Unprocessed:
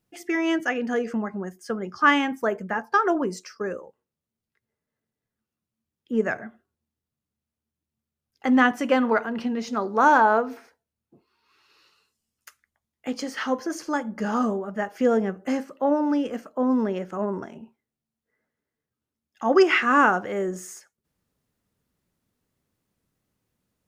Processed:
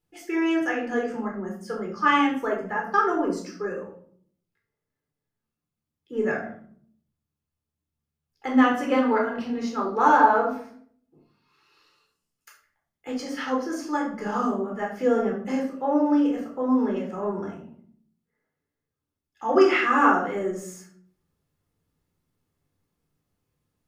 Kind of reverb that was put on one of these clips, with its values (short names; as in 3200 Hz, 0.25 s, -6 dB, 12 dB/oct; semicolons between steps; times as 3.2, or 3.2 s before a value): shoebox room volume 740 m³, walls furnished, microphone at 4.1 m; gain -7 dB